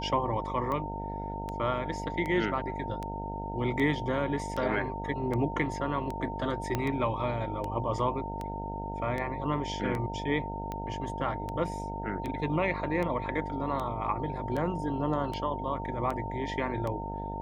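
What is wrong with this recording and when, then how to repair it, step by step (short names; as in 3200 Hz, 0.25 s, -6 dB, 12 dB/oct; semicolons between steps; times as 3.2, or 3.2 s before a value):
buzz 50 Hz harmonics 17 -38 dBFS
tick 78 rpm -22 dBFS
tone 910 Hz -37 dBFS
6.75 pop -15 dBFS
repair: de-click; de-hum 50 Hz, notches 17; notch 910 Hz, Q 30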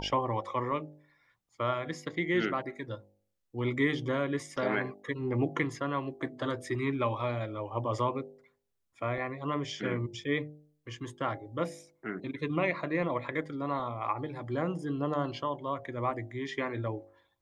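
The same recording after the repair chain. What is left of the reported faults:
6.75 pop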